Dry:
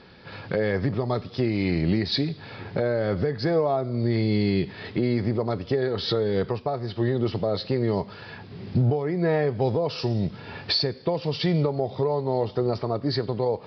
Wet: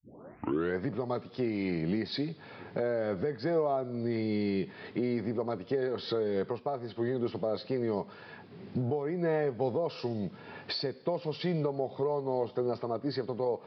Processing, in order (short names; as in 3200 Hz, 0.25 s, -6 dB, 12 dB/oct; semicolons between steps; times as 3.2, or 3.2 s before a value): tape start at the beginning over 0.79 s; HPF 180 Hz 12 dB/oct; high shelf 4100 Hz -11.5 dB; gain -5.5 dB